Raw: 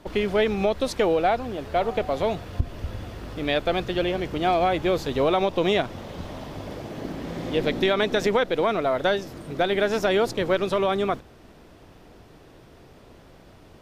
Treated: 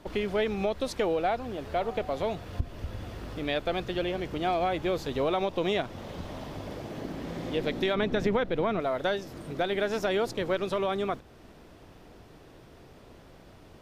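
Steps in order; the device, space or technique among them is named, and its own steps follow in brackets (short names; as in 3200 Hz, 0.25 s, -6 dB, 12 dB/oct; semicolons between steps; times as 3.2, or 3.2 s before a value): 7.95–8.8 tone controls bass +9 dB, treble -8 dB; parallel compression (in parallel at -1.5 dB: compressor, threshold -33 dBFS, peak gain reduction 16.5 dB); on the sum: gain -7.5 dB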